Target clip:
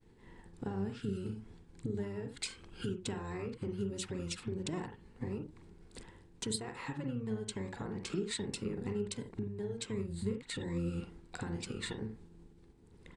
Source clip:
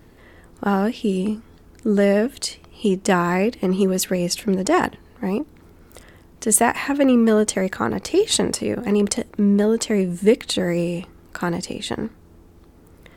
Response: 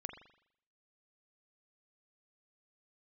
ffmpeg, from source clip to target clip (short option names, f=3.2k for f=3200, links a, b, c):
-filter_complex "[0:a]aresample=22050,aresample=44100,agate=range=-33dB:threshold=-42dB:ratio=3:detection=peak,acompressor=threshold=-30dB:ratio=20,equalizer=f=400:t=o:w=0.33:g=6,equalizer=f=630:t=o:w=0.33:g=-10,equalizer=f=1.25k:t=o:w=0.33:g=-9,equalizer=f=8k:t=o:w=0.33:g=4[a];[1:a]atrim=start_sample=2205,atrim=end_sample=3969[b];[a][b]afir=irnorm=-1:irlink=0,asplit=2[c][d];[d]asetrate=22050,aresample=44100,atempo=2,volume=-1dB[e];[c][e]amix=inputs=2:normalize=0,volume=-5dB"